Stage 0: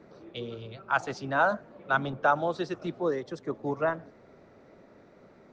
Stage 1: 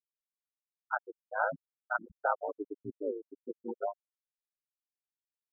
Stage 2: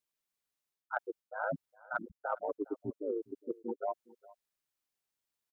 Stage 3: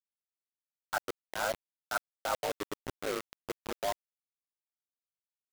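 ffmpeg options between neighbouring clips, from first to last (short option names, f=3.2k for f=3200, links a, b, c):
-af "afftfilt=real='re*gte(hypot(re,im),0.2)':imag='im*gte(hypot(re,im),0.2)':win_size=1024:overlap=0.75,aeval=exprs='val(0)*sin(2*PI*53*n/s)':c=same,volume=-3dB"
-af "areverse,acompressor=threshold=-39dB:ratio=10,areverse,aecho=1:1:411:0.0794,volume=7dB"
-filter_complex "[0:a]acrossover=split=140|420|1100[a][b][c][d];[b]acompressor=threshold=-49dB:ratio=12[e];[a][e][c][d]amix=inputs=4:normalize=0,acrusher=bits=5:mix=0:aa=0.000001,volume=2.5dB"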